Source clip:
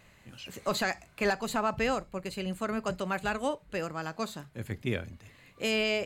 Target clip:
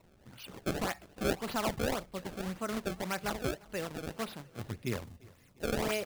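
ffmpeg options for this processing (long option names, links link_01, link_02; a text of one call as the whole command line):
ffmpeg -i in.wav -filter_complex "[0:a]acrusher=samples=26:mix=1:aa=0.000001:lfo=1:lforange=41.6:lforate=1.8,asettb=1/sr,asplit=3[link_01][link_02][link_03];[link_01]atrim=end=5.044[link_04];[link_02]atrim=start=5.04:end=5.63,asetpts=PTS-STARTPTS,afade=type=in:duration=0.004:curve=qsin,afade=type=out:start_time=0.586:duration=0.004:curve=qsin,equalizer=frequency=1400:width=0.36:gain=-8.5[link_05];[link_03]atrim=start=5.626[link_06];[link_04][link_05]acrossfade=duration=0.004:curve1=hsin:curve2=qsin[link_07];[link_07][link_06]acrossfade=duration=0.004:curve1=qsin:curve2=hsin,aecho=1:1:350|700|1050|1400:0.0631|0.036|0.0205|0.0117,volume=-3.5dB" out.wav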